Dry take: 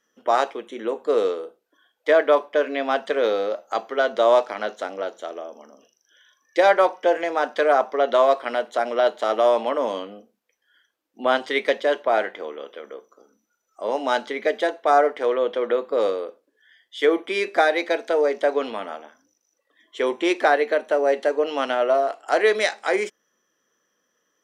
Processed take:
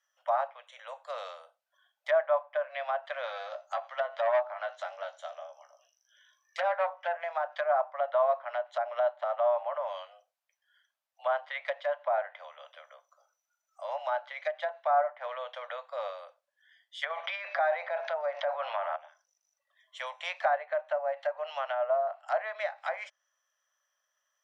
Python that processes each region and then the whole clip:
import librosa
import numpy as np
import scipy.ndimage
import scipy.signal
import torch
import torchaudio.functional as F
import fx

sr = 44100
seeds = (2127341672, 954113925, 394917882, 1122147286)

y = fx.chain(x, sr, fx.doubler(ms=16.0, db=-7.5),
    fx.echo_single(ms=88, db=-24.0),
    fx.transformer_sat(knee_hz=1600.0), at=(3.26, 7.15))
y = fx.chain(y, sr, fx.steep_lowpass(hz=6300.0, slope=72),
    fx.transient(attack_db=-6, sustain_db=5),
    fx.env_flatten(amount_pct=50), at=(17.03, 18.96))
y = scipy.signal.sosfilt(scipy.signal.butter(16, 570.0, 'highpass', fs=sr, output='sos'), y)
y = fx.env_lowpass_down(y, sr, base_hz=1300.0, full_db=-20.0)
y = y * 10.0 ** (-7.5 / 20.0)